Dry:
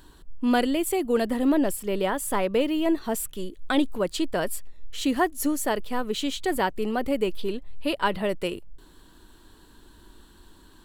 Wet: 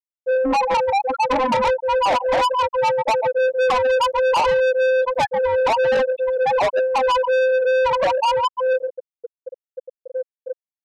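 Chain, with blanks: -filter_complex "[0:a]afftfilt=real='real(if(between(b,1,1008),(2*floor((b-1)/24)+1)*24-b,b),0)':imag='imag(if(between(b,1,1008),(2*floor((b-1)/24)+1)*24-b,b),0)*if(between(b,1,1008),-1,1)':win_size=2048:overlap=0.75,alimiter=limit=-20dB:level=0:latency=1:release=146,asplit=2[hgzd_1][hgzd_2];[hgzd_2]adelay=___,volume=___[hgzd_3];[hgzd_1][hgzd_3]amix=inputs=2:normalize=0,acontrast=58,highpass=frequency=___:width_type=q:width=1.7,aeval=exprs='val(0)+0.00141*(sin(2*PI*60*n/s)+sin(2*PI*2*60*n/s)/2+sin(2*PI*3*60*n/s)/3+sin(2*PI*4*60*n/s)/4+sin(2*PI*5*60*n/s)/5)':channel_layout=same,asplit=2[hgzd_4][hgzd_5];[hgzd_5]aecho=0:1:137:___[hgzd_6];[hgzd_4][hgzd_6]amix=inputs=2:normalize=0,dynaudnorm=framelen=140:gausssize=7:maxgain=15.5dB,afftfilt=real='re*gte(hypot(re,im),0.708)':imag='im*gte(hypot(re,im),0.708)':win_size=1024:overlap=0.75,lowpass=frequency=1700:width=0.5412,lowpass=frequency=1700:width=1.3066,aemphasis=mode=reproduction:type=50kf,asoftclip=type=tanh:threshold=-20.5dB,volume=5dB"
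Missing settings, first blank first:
18, -9dB, 640, 0.299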